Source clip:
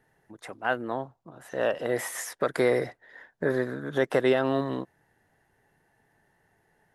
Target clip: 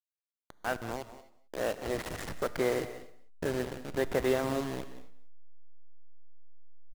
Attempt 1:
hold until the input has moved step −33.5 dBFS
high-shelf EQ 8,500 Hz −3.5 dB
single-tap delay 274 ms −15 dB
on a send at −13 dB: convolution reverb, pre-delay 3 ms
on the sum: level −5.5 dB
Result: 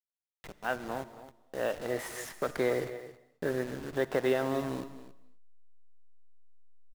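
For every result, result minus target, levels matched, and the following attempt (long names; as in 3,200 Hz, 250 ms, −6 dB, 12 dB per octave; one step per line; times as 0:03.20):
echo 93 ms late; hold until the input has moved: distortion −8 dB
hold until the input has moved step −33.5 dBFS
high-shelf EQ 8,500 Hz −3.5 dB
single-tap delay 181 ms −15 dB
on a send at −13 dB: convolution reverb, pre-delay 3 ms
on the sum: level −5.5 dB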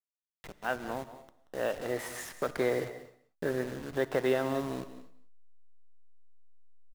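hold until the input has moved: distortion −8 dB
hold until the input has moved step −26 dBFS
high-shelf EQ 8,500 Hz −3.5 dB
single-tap delay 181 ms −15 dB
on a send at −13 dB: convolution reverb, pre-delay 3 ms
on the sum: level −5.5 dB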